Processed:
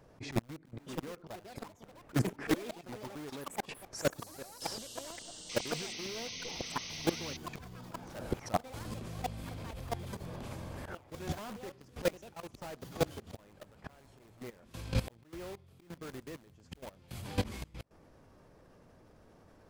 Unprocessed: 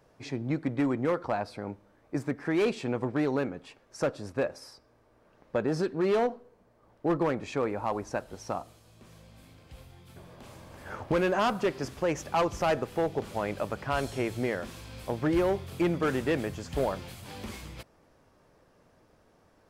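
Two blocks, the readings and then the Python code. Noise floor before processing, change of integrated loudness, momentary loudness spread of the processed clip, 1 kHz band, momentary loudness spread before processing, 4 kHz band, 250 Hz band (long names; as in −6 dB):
−64 dBFS, −9.5 dB, 14 LU, −9.5 dB, 15 LU, +0.5 dB, −9.5 dB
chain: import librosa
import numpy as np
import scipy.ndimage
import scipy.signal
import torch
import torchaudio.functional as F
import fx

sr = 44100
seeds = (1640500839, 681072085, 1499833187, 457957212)

p1 = fx.low_shelf(x, sr, hz=380.0, db=6.0)
p2 = (np.mod(10.0 ** (24.0 / 20.0) * p1 + 1.0, 2.0) - 1.0) / 10.0 ** (24.0 / 20.0)
p3 = p1 + F.gain(torch.from_numpy(p2), -3.0).numpy()
p4 = fx.auto_swell(p3, sr, attack_ms=121.0)
p5 = fx.gate_flip(p4, sr, shuts_db=-24.0, range_db=-26)
p6 = fx.level_steps(p5, sr, step_db=17)
p7 = fx.spec_paint(p6, sr, seeds[0], shape='noise', start_s=5.49, length_s=1.88, low_hz=1900.0, high_hz=6400.0, level_db=-52.0)
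p8 = fx.echo_pitch(p7, sr, ms=720, semitones=6, count=3, db_per_echo=-6.0)
y = F.gain(torch.from_numpy(p8), 8.0).numpy()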